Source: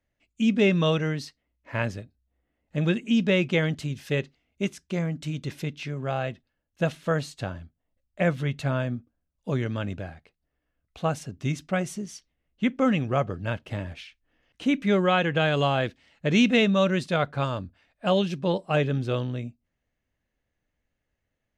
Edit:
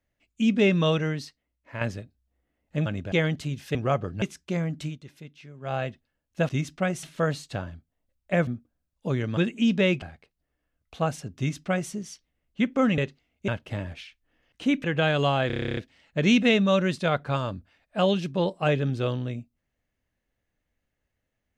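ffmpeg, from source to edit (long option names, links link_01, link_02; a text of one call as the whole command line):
ffmpeg -i in.wav -filter_complex "[0:a]asplit=26[link_01][link_02][link_03][link_04][link_05][link_06][link_07][link_08][link_09][link_10][link_11][link_12][link_13][link_14][link_15][link_16][link_17][link_18][link_19][link_20][link_21][link_22][link_23][link_24][link_25][link_26];[link_01]atrim=end=1.81,asetpts=PTS-STARTPTS,afade=type=out:start_time=1.01:duration=0.8:silence=0.446684[link_27];[link_02]atrim=start=1.81:end=2.862,asetpts=PTS-STARTPTS,afade=type=in:duration=0.004:curve=hsin:silence=0.446684[link_28];[link_03]atrim=start=9.788:end=10.052[link_29];[link_04]atrim=start=3.508:end=4.142[link_30];[link_05]atrim=start=13.008:end=13.482[link_31];[link_06]atrim=start=4.638:end=5.4,asetpts=PTS-STARTPTS,afade=type=out:start_time=0.632:duration=0.13:silence=0.223872[link_32];[link_07]atrim=start=5.4:end=6.03,asetpts=PTS-STARTPTS,volume=-13dB[link_33];[link_08]atrim=start=6.03:end=6.912,asetpts=PTS-STARTPTS,afade=type=in:duration=0.13:silence=0.223872[link_34];[link_09]atrim=start=11.398:end=11.942[link_35];[link_10]atrim=start=6.908:end=8.352[link_36];[link_11]atrim=start=8.888:end=9.792[link_37];[link_12]atrim=start=2.858:end=3.512[link_38];[link_13]atrim=start=10.048:end=13.012[link_39];[link_14]atrim=start=4.138:end=4.642[link_40];[link_15]atrim=start=13.478:end=14.842[link_41];[link_16]atrim=start=15.218:end=15.882[link_42];[link_17]atrim=start=15.848:end=15.882[link_43];[link_18]atrim=start=15.848:end=15.882[link_44];[link_19]atrim=start=15.848:end=15.882[link_45];[link_20]atrim=start=15.848:end=15.882[link_46];[link_21]atrim=start=15.848:end=15.882[link_47];[link_22]atrim=start=15.848:end=15.882[link_48];[link_23]atrim=start=15.848:end=15.882[link_49];[link_24]atrim=start=15.848:end=15.882[link_50];[link_25]atrim=start=15.848:end=15.882[link_51];[link_26]atrim=start=15.848[link_52];[link_27][link_28]concat=n=2:v=0:a=1[link_53];[link_53][link_29]acrossfade=duration=0.004:curve1=hsin:curve2=hsin[link_54];[link_54][link_30]acrossfade=duration=0.004:curve1=hsin:curve2=hsin[link_55];[link_55][link_31]acrossfade=duration=0.004:curve1=hsin:curve2=hsin[link_56];[link_32][link_33][link_34]concat=n=3:v=0:a=1[link_57];[link_56][link_57]acrossfade=duration=0.004:curve1=hsin:curve2=hsin[link_58];[link_58][link_35]acrossfade=duration=0.004:curve1=hsin:curve2=hsin[link_59];[link_59][link_36]acrossfade=duration=0.004:curve1=hsin:curve2=hsin[link_60];[link_60][link_37]acrossfade=duration=0.004:curve1=hsin:curve2=hsin[link_61];[link_61][link_38]acrossfade=duration=0.004:curve1=hsin:curve2=hsin[link_62];[link_62][link_39]acrossfade=duration=0.004:curve1=hsin:curve2=hsin[link_63];[link_63][link_40]acrossfade=duration=0.004:curve1=hsin:curve2=hsin[link_64];[link_64][link_41]acrossfade=duration=0.004:curve1=hsin:curve2=hsin[link_65];[link_65][link_42]acrossfade=duration=0.004:curve1=hsin:curve2=hsin[link_66];[link_66][link_43]acrossfade=duration=0.004:curve1=hsin:curve2=hsin[link_67];[link_67][link_44]acrossfade=duration=0.004:curve1=hsin:curve2=hsin[link_68];[link_68][link_45]acrossfade=duration=0.004:curve1=hsin:curve2=hsin[link_69];[link_69][link_46]acrossfade=duration=0.004:curve1=hsin:curve2=hsin[link_70];[link_70][link_47]acrossfade=duration=0.004:curve1=hsin:curve2=hsin[link_71];[link_71][link_48]acrossfade=duration=0.004:curve1=hsin:curve2=hsin[link_72];[link_72][link_49]acrossfade=duration=0.004:curve1=hsin:curve2=hsin[link_73];[link_73][link_50]acrossfade=duration=0.004:curve1=hsin:curve2=hsin[link_74];[link_74][link_51]acrossfade=duration=0.004:curve1=hsin:curve2=hsin[link_75];[link_75][link_52]acrossfade=duration=0.004:curve1=hsin:curve2=hsin" out.wav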